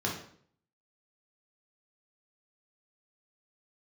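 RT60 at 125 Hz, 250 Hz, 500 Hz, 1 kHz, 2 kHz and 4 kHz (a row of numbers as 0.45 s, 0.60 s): 0.70 s, 0.65 s, 0.60 s, 0.55 s, 0.50 s, 0.50 s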